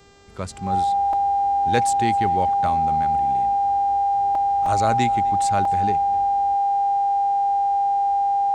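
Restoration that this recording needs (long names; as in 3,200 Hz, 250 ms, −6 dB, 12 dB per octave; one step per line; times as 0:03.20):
hum removal 398.4 Hz, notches 20
notch filter 800 Hz, Q 30
repair the gap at 0:01.13/0:04.35/0:04.66/0:05.65, 3.2 ms
echo removal 258 ms −22.5 dB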